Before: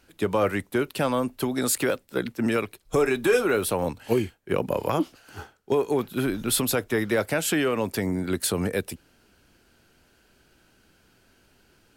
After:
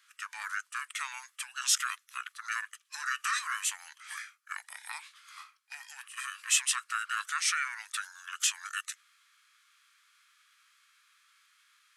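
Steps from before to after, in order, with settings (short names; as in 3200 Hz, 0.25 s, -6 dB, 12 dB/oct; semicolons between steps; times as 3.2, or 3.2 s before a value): elliptic high-pass 1600 Hz, stop band 70 dB; formant shift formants -5 st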